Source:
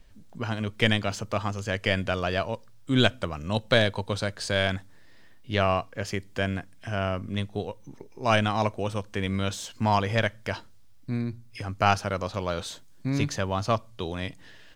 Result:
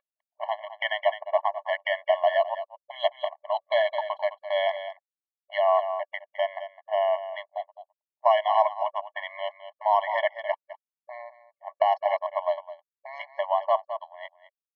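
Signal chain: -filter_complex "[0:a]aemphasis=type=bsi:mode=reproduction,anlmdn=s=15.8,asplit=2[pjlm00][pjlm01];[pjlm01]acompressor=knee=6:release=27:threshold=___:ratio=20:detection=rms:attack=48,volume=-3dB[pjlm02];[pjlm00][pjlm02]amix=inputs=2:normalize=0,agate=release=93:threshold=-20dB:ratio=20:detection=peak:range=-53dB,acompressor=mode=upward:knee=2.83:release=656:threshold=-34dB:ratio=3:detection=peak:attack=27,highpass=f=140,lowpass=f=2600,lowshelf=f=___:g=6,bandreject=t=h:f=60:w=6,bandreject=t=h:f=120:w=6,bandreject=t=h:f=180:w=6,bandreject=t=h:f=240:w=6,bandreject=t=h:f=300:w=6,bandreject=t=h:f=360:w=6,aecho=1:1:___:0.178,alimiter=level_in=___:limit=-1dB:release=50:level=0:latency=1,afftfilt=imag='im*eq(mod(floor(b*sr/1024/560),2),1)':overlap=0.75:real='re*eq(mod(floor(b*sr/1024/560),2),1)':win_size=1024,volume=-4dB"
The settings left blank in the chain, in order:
-25dB, 370, 210, 10.5dB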